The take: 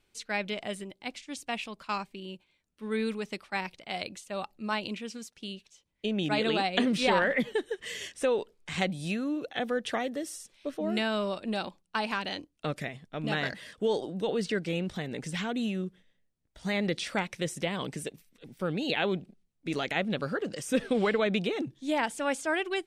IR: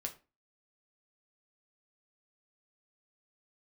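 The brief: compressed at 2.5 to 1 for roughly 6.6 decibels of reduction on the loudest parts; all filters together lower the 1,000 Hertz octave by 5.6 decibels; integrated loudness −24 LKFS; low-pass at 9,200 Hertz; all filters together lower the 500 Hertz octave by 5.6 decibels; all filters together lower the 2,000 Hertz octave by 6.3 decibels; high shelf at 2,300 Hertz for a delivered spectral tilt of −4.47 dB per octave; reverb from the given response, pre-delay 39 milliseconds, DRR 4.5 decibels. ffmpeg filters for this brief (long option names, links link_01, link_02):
-filter_complex "[0:a]lowpass=9200,equalizer=frequency=500:width_type=o:gain=-5.5,equalizer=frequency=1000:width_type=o:gain=-3.5,equalizer=frequency=2000:width_type=o:gain=-3.5,highshelf=frequency=2300:gain=-6,acompressor=threshold=-35dB:ratio=2.5,asplit=2[link_01][link_02];[1:a]atrim=start_sample=2205,adelay=39[link_03];[link_02][link_03]afir=irnorm=-1:irlink=0,volume=-3.5dB[link_04];[link_01][link_04]amix=inputs=2:normalize=0,volume=14.5dB"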